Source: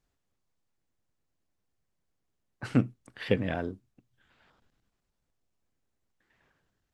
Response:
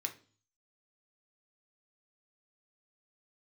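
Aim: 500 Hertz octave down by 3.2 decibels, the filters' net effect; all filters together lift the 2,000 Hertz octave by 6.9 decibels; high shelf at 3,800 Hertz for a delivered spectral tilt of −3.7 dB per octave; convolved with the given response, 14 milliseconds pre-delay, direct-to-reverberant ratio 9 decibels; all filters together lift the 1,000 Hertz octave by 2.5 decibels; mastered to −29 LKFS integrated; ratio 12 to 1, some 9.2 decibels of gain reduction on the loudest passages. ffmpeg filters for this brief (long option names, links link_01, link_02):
-filter_complex "[0:a]equalizer=frequency=500:width_type=o:gain=-5,equalizer=frequency=1000:width_type=o:gain=4,equalizer=frequency=2000:width_type=o:gain=5.5,highshelf=frequency=3800:gain=9,acompressor=threshold=-28dB:ratio=12,asplit=2[link_01][link_02];[1:a]atrim=start_sample=2205,adelay=14[link_03];[link_02][link_03]afir=irnorm=-1:irlink=0,volume=-9.5dB[link_04];[link_01][link_04]amix=inputs=2:normalize=0,volume=7dB"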